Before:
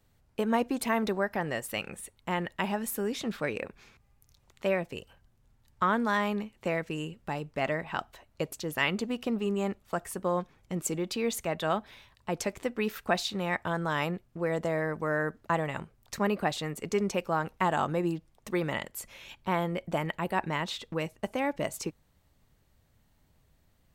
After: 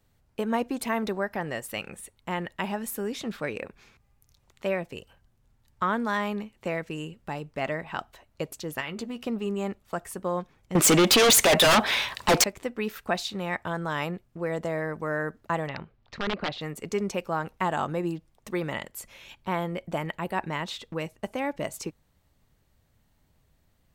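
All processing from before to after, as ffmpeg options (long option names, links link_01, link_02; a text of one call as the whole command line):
ffmpeg -i in.wav -filter_complex "[0:a]asettb=1/sr,asplit=3[link_01][link_02][link_03];[link_01]atrim=end=8.804[link_04];[link_02]atrim=start=8.8:end=9.27,asetpts=PTS-STARTPTS,afade=type=in:duration=0.004:curve=qsin,afade=type=out:start_time=0.466:duration=0.004:curve=qsin,acompressor=threshold=-31dB:ratio=4:attack=3.2:release=140:knee=1:detection=peak,asplit=2[link_05][link_06];[link_06]adelay=13,volume=-9dB[link_07];[link_05][link_07]amix=inputs=2:normalize=0,atrim=end_sample=20727[link_08];[link_03]atrim=start=9.266[link_09];[link_04][link_08]acrossfade=duration=0.004:curve1=hsin:curve2=qsin[link_10];[link_10][link_09]acrossfade=duration=0.004:curve1=qsin:curve2=hsin,asettb=1/sr,asplit=3[link_11][link_12][link_13];[link_11]atrim=end=10.754[link_14];[link_12]atrim=start=10.75:end=12.44,asetpts=PTS-STARTPTS,afade=type=in:duration=0.004:curve=qsin,afade=type=out:start_time=1.686:duration=0.004:curve=qsin,asplit=2[link_15][link_16];[link_16]highpass=frequency=720:poles=1,volume=21dB,asoftclip=type=tanh:threshold=-15dB[link_17];[link_15][link_17]amix=inputs=2:normalize=0,lowpass=frequency=7800:poles=1,volume=-6dB,aeval=exprs='0.178*sin(PI/2*2.82*val(0)/0.178)':channel_layout=same[link_18];[link_13]atrim=start=12.436[link_19];[link_14][link_18]acrossfade=duration=0.004:curve1=hsin:curve2=qsin[link_20];[link_20][link_19]acrossfade=duration=0.004:curve1=qsin:curve2=hsin,asettb=1/sr,asplit=3[link_21][link_22][link_23];[link_21]atrim=end=15.684[link_24];[link_22]atrim=start=15.68:end=16.61,asetpts=PTS-STARTPTS,afade=type=in:duration=0.004:curve=qsin,afade=type=out:start_time=0.926:duration=0.004:curve=qsin,aeval=exprs='(mod(10.6*val(0)+1,2)-1)/10.6':channel_layout=same,lowpass=frequency=4200:width=0.5412,lowpass=frequency=4200:width=1.3066[link_25];[link_23]atrim=start=16.606[link_26];[link_24][link_25]acrossfade=duration=0.004:curve1=hsin:curve2=qsin[link_27];[link_27][link_26]acrossfade=duration=0.004:curve1=qsin:curve2=hsin" out.wav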